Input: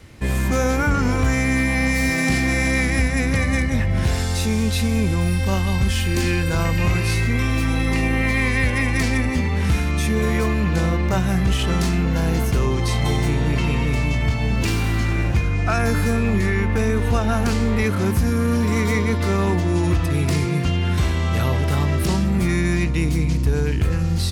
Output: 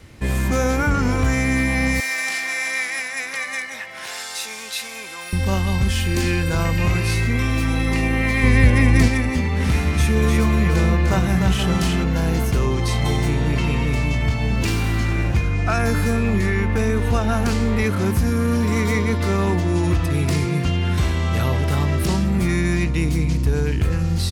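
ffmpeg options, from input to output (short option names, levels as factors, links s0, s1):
-filter_complex "[0:a]asettb=1/sr,asplit=3[s0][s1][s2];[s0]atrim=end=2.004[s3];[s1]atrim=start=2:end=5.33,asetpts=PTS-STARTPTS,afade=t=in:d=0.004:c=qsin,afade=t=out:st=3.326:d=0.004:c=qsin,highpass=970[s4];[s2]atrim=start=5.326[s5];[s3][s4]acrossfade=d=0.004:c1=hsin:c2=qsin[s6];[s6][s5]acrossfade=d=0.004:c1=qsin:c2=hsin,asettb=1/sr,asplit=3[s7][s8][s9];[s7]atrim=end=8.434[s10];[s8]atrim=start=8.43:end=9.08,asetpts=PTS-STARTPTS,afade=t=in:d=0.004:c=qsin,afade=t=out:st=0.646:d=0.004:c=qsin,lowshelf=f=480:g=8[s11];[s9]atrim=start=9.076[s12];[s10][s11]acrossfade=d=0.004:c1=hsin:c2=qsin[s13];[s13][s12]acrossfade=d=0.004:c1=qsin:c2=hsin,asplit=3[s14][s15][s16];[s14]afade=t=out:st=9.59:d=0.02[s17];[s15]aecho=1:1:301:0.596,afade=t=in:st=9.59:d=0.02,afade=t=out:st=12.03:d=0.02[s18];[s16]afade=t=in:st=12.03:d=0.02[s19];[s17][s18][s19]amix=inputs=3:normalize=0"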